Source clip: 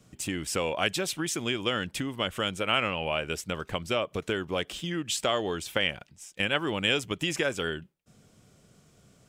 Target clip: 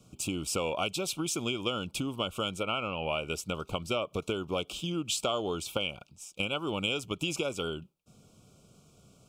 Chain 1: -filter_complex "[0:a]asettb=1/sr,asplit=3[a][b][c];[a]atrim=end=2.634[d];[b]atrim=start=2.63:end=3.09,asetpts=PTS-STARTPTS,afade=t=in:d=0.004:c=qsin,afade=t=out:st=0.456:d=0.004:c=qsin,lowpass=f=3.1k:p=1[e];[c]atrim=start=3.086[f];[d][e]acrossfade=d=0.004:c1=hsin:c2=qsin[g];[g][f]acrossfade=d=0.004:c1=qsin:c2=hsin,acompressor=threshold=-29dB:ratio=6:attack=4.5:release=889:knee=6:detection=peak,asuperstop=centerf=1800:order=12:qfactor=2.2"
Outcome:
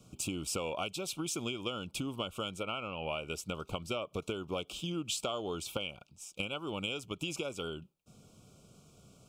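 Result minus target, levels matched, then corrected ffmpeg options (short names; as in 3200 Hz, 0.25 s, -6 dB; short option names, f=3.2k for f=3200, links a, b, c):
compressor: peak gain reduction +6 dB
-filter_complex "[0:a]asettb=1/sr,asplit=3[a][b][c];[a]atrim=end=2.634[d];[b]atrim=start=2.63:end=3.09,asetpts=PTS-STARTPTS,afade=t=in:d=0.004:c=qsin,afade=t=out:st=0.456:d=0.004:c=qsin,lowpass=f=3.1k:p=1[e];[c]atrim=start=3.086[f];[d][e]acrossfade=d=0.004:c1=hsin:c2=qsin[g];[g][f]acrossfade=d=0.004:c1=qsin:c2=hsin,acompressor=threshold=-21.5dB:ratio=6:attack=4.5:release=889:knee=6:detection=peak,asuperstop=centerf=1800:order=12:qfactor=2.2"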